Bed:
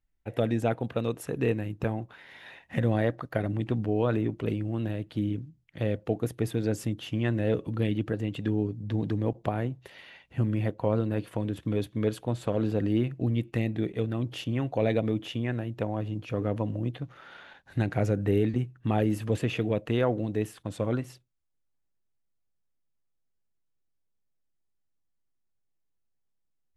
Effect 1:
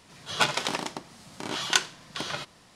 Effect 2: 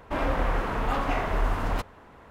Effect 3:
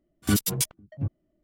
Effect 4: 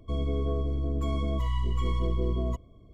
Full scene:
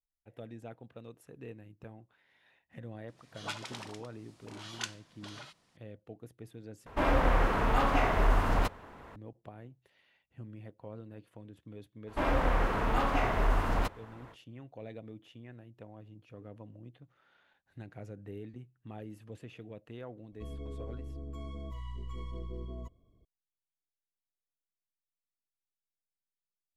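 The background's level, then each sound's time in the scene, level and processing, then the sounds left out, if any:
bed -19.5 dB
3.02 add 1 -15 dB + dispersion highs, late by 62 ms, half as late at 510 Hz
6.86 replace with 2
12.06 add 2 -2 dB, fades 0.05 s
20.32 add 4 -13.5 dB
not used: 3

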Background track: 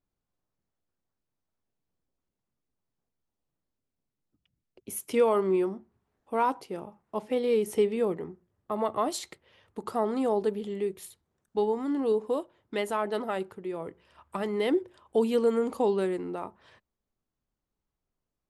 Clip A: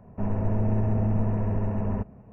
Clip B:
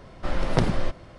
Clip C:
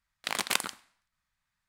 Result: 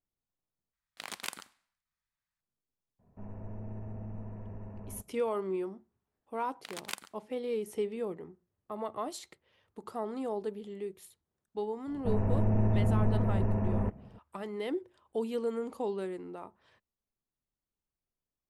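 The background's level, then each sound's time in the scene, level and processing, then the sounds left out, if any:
background track -8.5 dB
0.73 replace with C -11 dB
2.99 add A -17.5 dB
6.38 add C -10 dB + upward expander, over -46 dBFS
11.87 add A -2.5 dB
not used: B

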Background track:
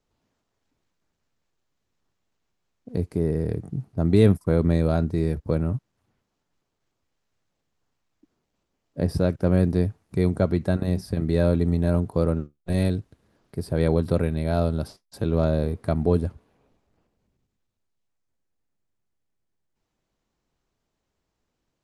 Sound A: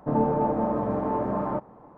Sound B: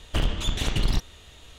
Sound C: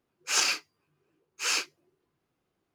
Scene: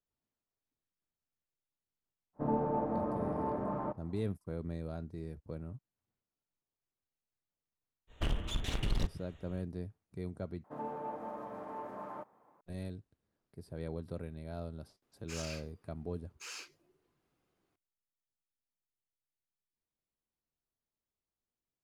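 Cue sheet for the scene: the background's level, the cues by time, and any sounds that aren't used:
background track -19.5 dB
2.33 add A -9 dB, fades 0.10 s
8.07 add B -9 dB, fades 0.05 s + Wiener smoothing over 9 samples
10.64 replace with A -13.5 dB + tilt +4 dB/oct
15.02 add C -1.5 dB + compressor 3:1, threshold -47 dBFS

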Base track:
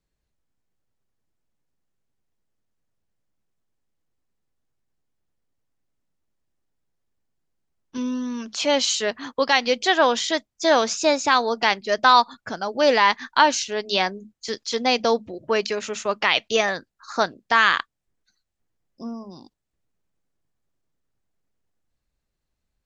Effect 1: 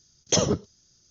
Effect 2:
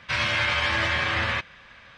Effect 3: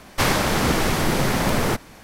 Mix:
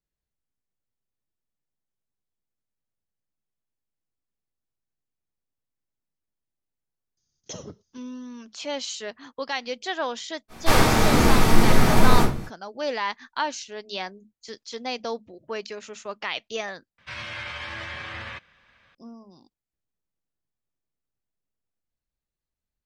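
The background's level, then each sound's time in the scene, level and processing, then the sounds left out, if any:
base track -10.5 dB
7.17 add 1 -16.5 dB
10.48 add 3 -6.5 dB, fades 0.05 s + shoebox room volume 260 m³, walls furnished, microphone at 3.7 m
16.98 replace with 2 -11 dB

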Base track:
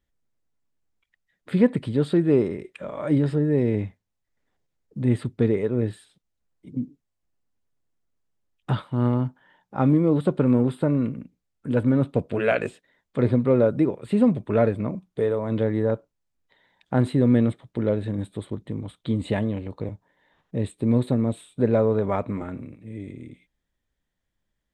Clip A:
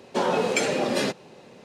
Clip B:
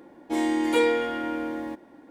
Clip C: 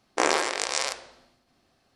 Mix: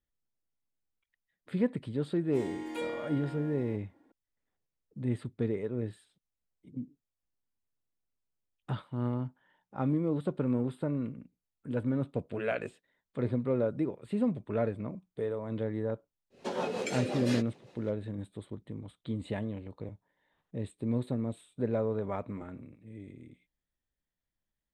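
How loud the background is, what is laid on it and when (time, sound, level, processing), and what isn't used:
base track -10.5 dB
2.02 add B -15 dB
16.3 add A -8 dB, fades 0.05 s + rotary speaker horn 5.5 Hz
not used: C

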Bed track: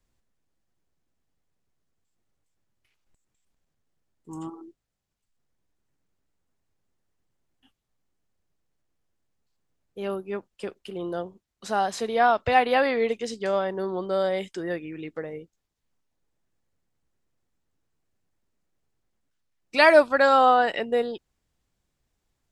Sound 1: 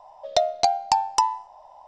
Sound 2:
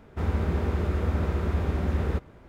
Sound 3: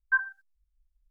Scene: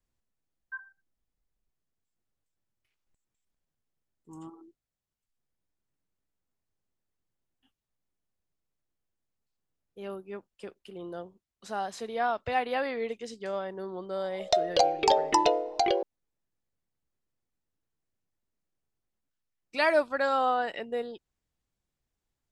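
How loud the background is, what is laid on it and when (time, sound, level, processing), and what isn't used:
bed track -8.5 dB
0.6 add 3 -15.5 dB
14.16 add 1 -4 dB + echoes that change speed 0.145 s, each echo -4 st, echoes 3
not used: 2

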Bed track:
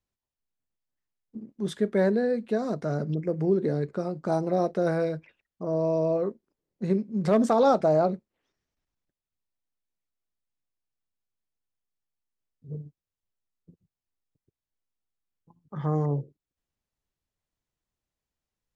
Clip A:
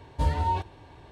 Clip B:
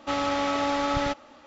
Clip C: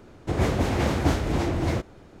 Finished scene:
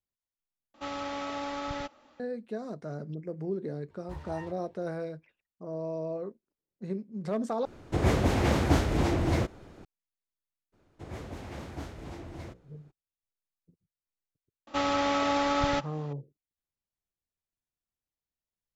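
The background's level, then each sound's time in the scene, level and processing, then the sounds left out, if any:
bed track -9.5 dB
0.74 replace with B -9.5 dB
3.9 add A -18 dB + self-modulated delay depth 0.5 ms
7.65 replace with C -1.5 dB
10.72 add C -17 dB, fades 0.02 s + notches 60/120/180/240/300/360/420/480/540 Hz
14.67 add B -1 dB

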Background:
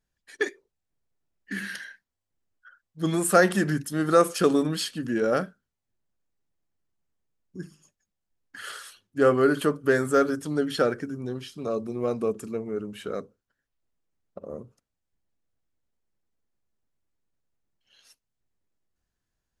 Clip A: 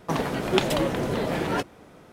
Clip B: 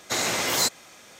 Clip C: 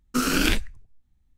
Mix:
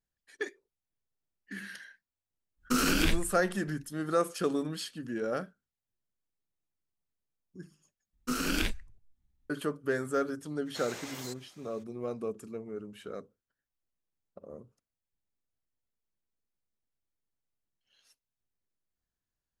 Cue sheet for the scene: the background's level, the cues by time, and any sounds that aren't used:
background -9 dB
2.56 add C -0.5 dB, fades 0.10 s + limiter -16 dBFS
8.13 replace with C -8.5 dB
10.65 add B -14.5 dB, fades 0.02 s + limiter -19.5 dBFS
not used: A

